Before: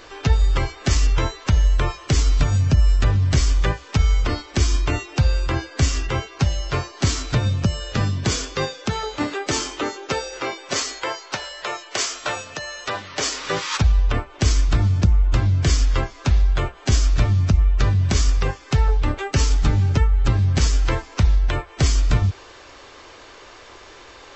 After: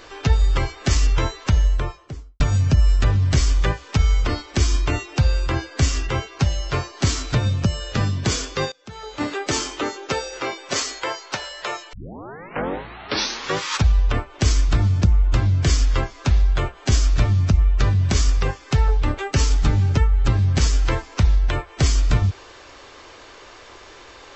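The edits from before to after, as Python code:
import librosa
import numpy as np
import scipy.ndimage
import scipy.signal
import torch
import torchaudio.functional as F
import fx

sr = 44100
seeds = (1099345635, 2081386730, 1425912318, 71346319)

y = fx.studio_fade_out(x, sr, start_s=1.46, length_s=0.94)
y = fx.edit(y, sr, fx.fade_in_from(start_s=8.72, length_s=0.55, curve='qua', floor_db=-20.5),
    fx.tape_start(start_s=11.93, length_s=1.65), tone=tone)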